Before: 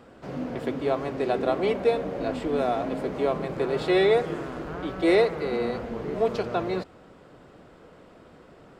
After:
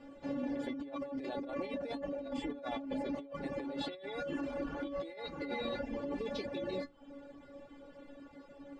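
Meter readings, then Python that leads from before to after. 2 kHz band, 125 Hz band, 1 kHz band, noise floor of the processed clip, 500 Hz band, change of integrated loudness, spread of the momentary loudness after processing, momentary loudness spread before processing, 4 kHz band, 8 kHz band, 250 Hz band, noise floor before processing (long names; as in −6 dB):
−13.0 dB, −15.5 dB, −14.5 dB, −56 dBFS, −15.5 dB, −13.5 dB, 15 LU, 12 LU, −9.5 dB, can't be measured, −9.0 dB, −52 dBFS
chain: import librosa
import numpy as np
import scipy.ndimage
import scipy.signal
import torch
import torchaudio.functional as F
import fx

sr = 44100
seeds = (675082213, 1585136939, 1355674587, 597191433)

y = fx.spec_repair(x, sr, seeds[0], start_s=6.04, length_s=0.75, low_hz=480.0, high_hz=2200.0, source='both')
y = fx.peak_eq(y, sr, hz=1300.0, db=-6.0, octaves=0.45)
y = fx.hum_notches(y, sr, base_hz=60, count=6)
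y = fx.stiff_resonator(y, sr, f0_hz=280.0, decay_s=0.23, stiffness=0.002)
y = fx.dereverb_blind(y, sr, rt60_s=0.55)
y = fx.over_compress(y, sr, threshold_db=-48.0, ratio=-1.0)
y = scipy.signal.sosfilt(scipy.signal.bessel(2, 5400.0, 'lowpass', norm='mag', fs=sr, output='sos'), y)
y = fx.low_shelf(y, sr, hz=320.0, db=4.0)
y = y * 10.0 ** (6.5 / 20.0)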